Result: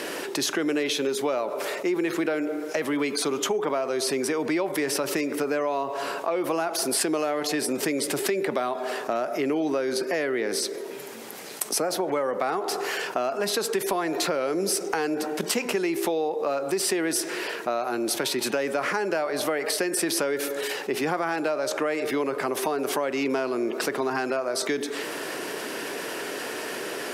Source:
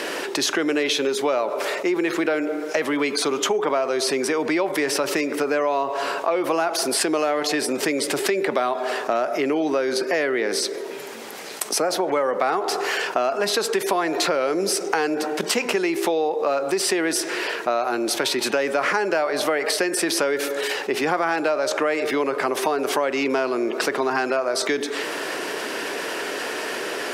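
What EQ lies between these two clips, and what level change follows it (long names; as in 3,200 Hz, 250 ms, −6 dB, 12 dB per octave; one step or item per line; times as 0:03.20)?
low-shelf EQ 240 Hz +9 dB
parametric band 13,000 Hz +7.5 dB 1.1 octaves
−6.0 dB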